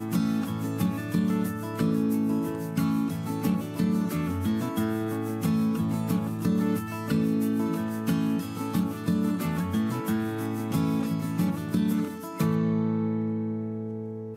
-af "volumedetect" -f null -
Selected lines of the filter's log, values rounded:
mean_volume: -27.0 dB
max_volume: -12.3 dB